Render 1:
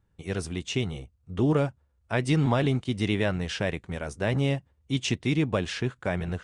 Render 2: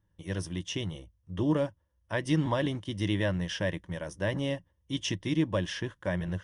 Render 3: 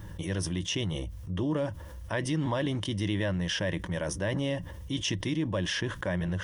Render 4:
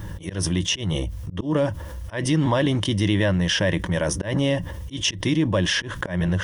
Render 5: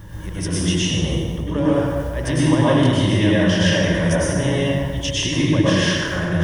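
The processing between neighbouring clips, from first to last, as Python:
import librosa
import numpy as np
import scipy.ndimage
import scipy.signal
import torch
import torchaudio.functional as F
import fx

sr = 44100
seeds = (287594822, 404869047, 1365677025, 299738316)

y1 = fx.ripple_eq(x, sr, per_octave=1.2, db=10)
y1 = y1 * 10.0 ** (-5.0 / 20.0)
y2 = fx.env_flatten(y1, sr, amount_pct=70)
y2 = y2 * 10.0 ** (-4.5 / 20.0)
y3 = fx.auto_swell(y2, sr, attack_ms=145.0)
y3 = y3 * 10.0 ** (9.0 / 20.0)
y4 = fx.rev_plate(y3, sr, seeds[0], rt60_s=1.8, hf_ratio=0.6, predelay_ms=90, drr_db=-8.5)
y4 = y4 * 10.0 ** (-4.5 / 20.0)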